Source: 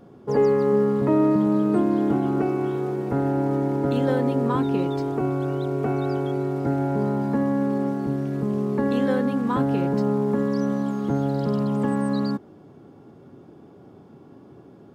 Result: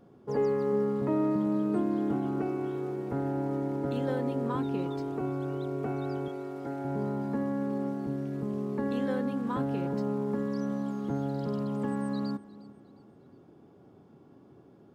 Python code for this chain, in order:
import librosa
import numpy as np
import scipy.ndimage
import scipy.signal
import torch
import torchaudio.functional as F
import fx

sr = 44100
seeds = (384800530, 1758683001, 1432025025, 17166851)

y = fx.highpass(x, sr, hz=390.0, slope=6, at=(6.28, 6.85))
y = fx.echo_feedback(y, sr, ms=357, feedback_pct=42, wet_db=-20)
y = y * librosa.db_to_amplitude(-8.5)